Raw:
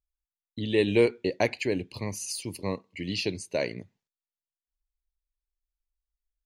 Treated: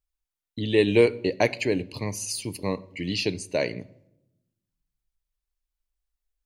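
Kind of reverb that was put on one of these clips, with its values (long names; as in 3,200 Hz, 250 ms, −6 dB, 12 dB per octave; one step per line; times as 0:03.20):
rectangular room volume 3,000 cubic metres, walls furnished, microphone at 0.43 metres
level +3 dB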